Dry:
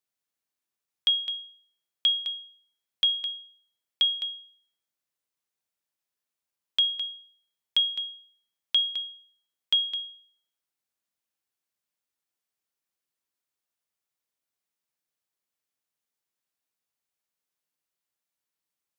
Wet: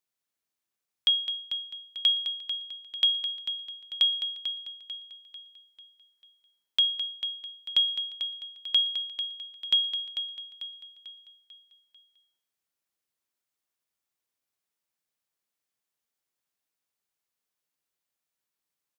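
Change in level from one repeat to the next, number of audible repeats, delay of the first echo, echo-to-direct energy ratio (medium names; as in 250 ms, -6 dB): -6.5 dB, 4, 444 ms, -8.0 dB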